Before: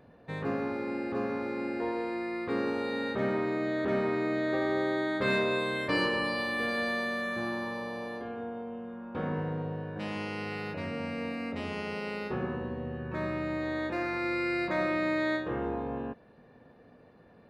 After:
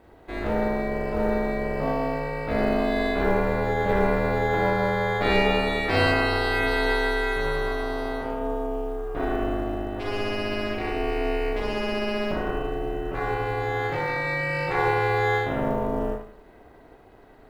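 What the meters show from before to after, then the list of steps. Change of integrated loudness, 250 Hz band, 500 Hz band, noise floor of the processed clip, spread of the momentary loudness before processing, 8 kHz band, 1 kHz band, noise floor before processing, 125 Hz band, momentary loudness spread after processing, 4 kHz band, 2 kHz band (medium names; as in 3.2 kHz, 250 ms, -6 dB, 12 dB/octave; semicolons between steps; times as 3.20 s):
+7.0 dB, +3.5 dB, +7.5 dB, -51 dBFS, 8 LU, no reading, +10.0 dB, -57 dBFS, +8.5 dB, 7 LU, +7.0 dB, +6.5 dB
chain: Schroeder reverb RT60 0.54 s, combs from 30 ms, DRR -1.5 dB; ring modulator 200 Hz; companded quantiser 8-bit; trim +5.5 dB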